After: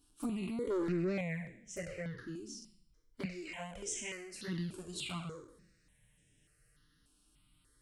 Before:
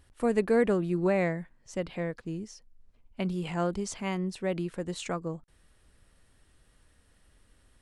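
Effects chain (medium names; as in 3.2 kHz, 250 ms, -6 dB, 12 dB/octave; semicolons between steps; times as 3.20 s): spectral sustain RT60 0.70 s; 3.25–4.48 s: peaking EQ 130 Hz -13 dB 1.7 oct; touch-sensitive flanger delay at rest 7.1 ms, full sweep at -21.5 dBFS; high-pass 99 Hz 6 dB/octave; peaking EQ 770 Hz -12.5 dB 1.6 oct; peak limiter -27 dBFS, peak gain reduction 8 dB; 0.70–1.21 s: overdrive pedal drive 20 dB, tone 2.2 kHz, clips at -27 dBFS; stepped phaser 3.4 Hz 520–4400 Hz; trim +2 dB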